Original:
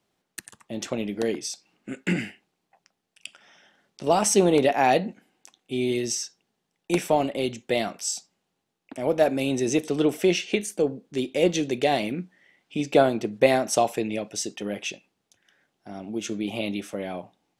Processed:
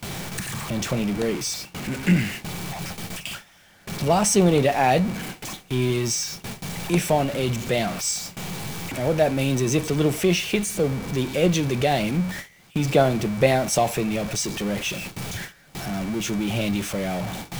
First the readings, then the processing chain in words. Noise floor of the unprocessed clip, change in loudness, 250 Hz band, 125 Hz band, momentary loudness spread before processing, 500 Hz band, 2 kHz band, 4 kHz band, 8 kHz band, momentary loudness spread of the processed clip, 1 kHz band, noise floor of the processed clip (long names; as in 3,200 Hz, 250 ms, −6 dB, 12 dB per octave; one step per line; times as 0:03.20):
−79 dBFS, +1.5 dB, +3.0 dB, +10.5 dB, 18 LU, +0.5 dB, +3.5 dB, +4.0 dB, +4.0 dB, 12 LU, +1.5 dB, −53 dBFS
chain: converter with a step at zero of −27.5 dBFS
steady tone 2,300 Hz −45 dBFS
low shelf with overshoot 200 Hz +8 dB, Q 1.5
noise gate with hold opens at −24 dBFS